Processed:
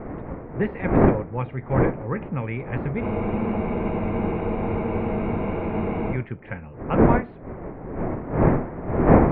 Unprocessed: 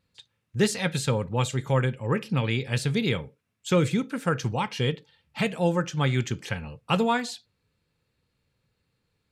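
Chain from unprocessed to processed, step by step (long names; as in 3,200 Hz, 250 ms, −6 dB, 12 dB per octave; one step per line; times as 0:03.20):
wind on the microphone 420 Hz −22 dBFS
elliptic low-pass filter 2,200 Hz, stop band 70 dB
frozen spectrum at 0:03.04, 3.09 s
level −1.5 dB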